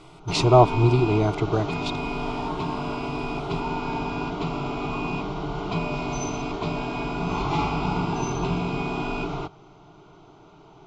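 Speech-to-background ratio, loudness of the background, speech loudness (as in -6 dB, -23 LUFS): 7.5 dB, -28.5 LUFS, -21.0 LUFS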